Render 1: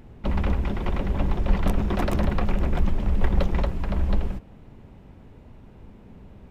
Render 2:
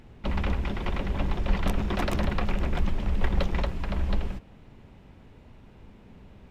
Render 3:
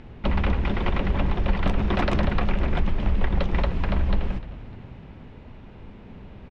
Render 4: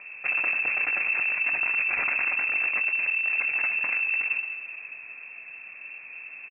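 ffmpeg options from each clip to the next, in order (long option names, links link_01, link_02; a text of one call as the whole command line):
ffmpeg -i in.wav -af "equalizer=frequency=3600:width=0.4:gain=6.5,volume=-4dB" out.wav
ffmpeg -i in.wav -filter_complex "[0:a]lowpass=3900,acompressor=threshold=-25dB:ratio=3,asplit=5[link_01][link_02][link_03][link_04][link_05];[link_02]adelay=301,afreqshift=-65,volume=-17dB[link_06];[link_03]adelay=602,afreqshift=-130,volume=-23dB[link_07];[link_04]adelay=903,afreqshift=-195,volume=-29dB[link_08];[link_05]adelay=1204,afreqshift=-260,volume=-35.1dB[link_09];[link_01][link_06][link_07][link_08][link_09]amix=inputs=5:normalize=0,volume=7dB" out.wav
ffmpeg -i in.wav -filter_complex "[0:a]volume=24dB,asoftclip=hard,volume=-24dB,asplit=2[link_01][link_02];[link_02]adelay=23,volume=-12.5dB[link_03];[link_01][link_03]amix=inputs=2:normalize=0,lowpass=frequency=2300:width_type=q:width=0.5098,lowpass=frequency=2300:width_type=q:width=0.6013,lowpass=frequency=2300:width_type=q:width=0.9,lowpass=frequency=2300:width_type=q:width=2.563,afreqshift=-2700" out.wav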